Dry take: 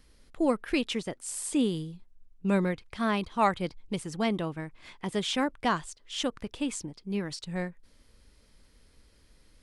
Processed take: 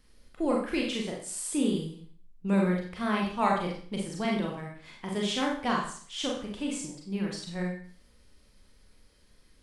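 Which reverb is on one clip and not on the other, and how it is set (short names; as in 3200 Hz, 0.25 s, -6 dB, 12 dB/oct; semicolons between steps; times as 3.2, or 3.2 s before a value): Schroeder reverb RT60 0.5 s, combs from 30 ms, DRR -1.5 dB; gain -4 dB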